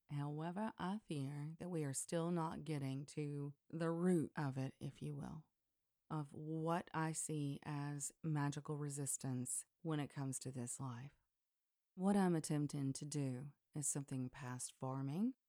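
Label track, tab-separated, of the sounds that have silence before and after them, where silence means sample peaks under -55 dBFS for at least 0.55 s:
6.100000	11.080000	sound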